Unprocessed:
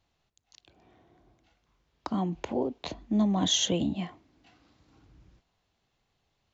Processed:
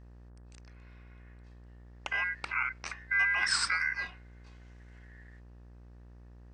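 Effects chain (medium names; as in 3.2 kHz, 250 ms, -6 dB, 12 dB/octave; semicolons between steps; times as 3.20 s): ring modulator 1.8 kHz; mains buzz 60 Hz, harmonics 29, -52 dBFS -8 dB/octave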